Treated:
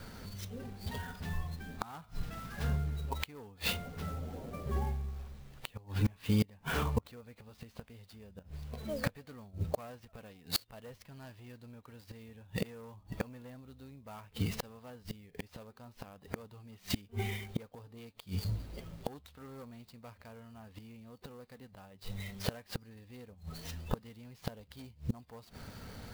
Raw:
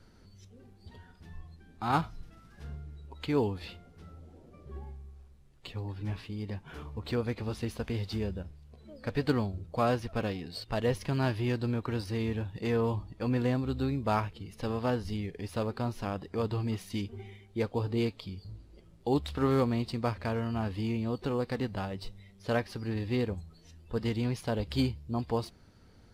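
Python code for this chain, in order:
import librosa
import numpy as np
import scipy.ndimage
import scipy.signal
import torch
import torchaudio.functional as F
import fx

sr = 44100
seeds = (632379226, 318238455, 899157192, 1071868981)

y = 10.0 ** (-24.0 / 20.0) * np.tanh(x / 10.0 ** (-24.0 / 20.0))
y = scipy.signal.sosfilt(scipy.signal.ellip(4, 1.0, 40, 8400.0, 'lowpass', fs=sr, output='sos'), y)
y = fx.low_shelf(y, sr, hz=110.0, db=-7.0)
y = fx.gate_flip(y, sr, shuts_db=-33.0, range_db=-30)
y = fx.peak_eq(y, sr, hz=340.0, db=-10.0, octaves=0.39)
y = fx.clock_jitter(y, sr, seeds[0], jitter_ms=0.026)
y = y * librosa.db_to_amplitude(15.0)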